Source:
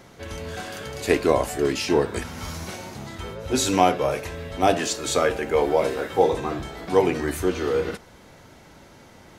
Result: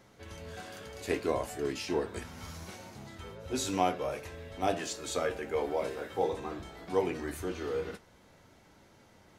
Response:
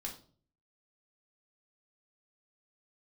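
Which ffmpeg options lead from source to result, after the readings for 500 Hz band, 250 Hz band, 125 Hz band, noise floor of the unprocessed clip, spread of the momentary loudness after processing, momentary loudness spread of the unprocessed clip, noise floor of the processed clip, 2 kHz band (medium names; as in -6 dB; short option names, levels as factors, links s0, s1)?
-11.0 dB, -11.0 dB, -11.0 dB, -49 dBFS, 14 LU, 15 LU, -61 dBFS, -11.0 dB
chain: -af "flanger=delay=9.4:depth=1.7:regen=-59:speed=0.67:shape=sinusoidal,volume=0.447"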